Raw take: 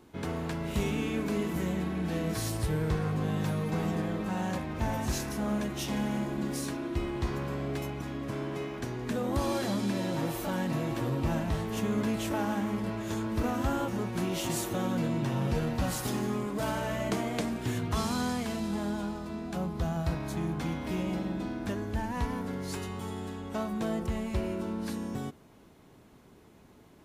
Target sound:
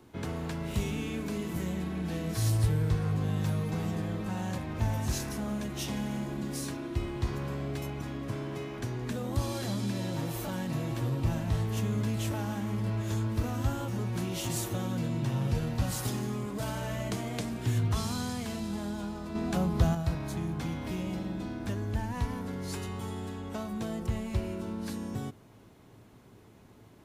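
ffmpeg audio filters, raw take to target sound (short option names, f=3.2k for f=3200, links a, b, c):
-filter_complex "[0:a]acrossover=split=170|3000[a][b][c];[b]acompressor=threshold=-37dB:ratio=2.5[d];[a][d][c]amix=inputs=3:normalize=0,equalizer=f=110:t=o:w=0.26:g=10,asettb=1/sr,asplit=3[e][f][g];[e]atrim=end=19.354[h];[f]atrim=start=19.35:end=19.95,asetpts=PTS-STARTPTS,afade=t=in:d=0.004:c=qsin,afade=t=out:st=0.596:d=0.004:c=qsin,acontrast=66[i];[g]atrim=start=19.946[j];[h][i]acrossfade=d=0.004:c1=hsin:c2=qsin[k];[k][j]acrossfade=d=0.004:c1=qsin:c2=hsin"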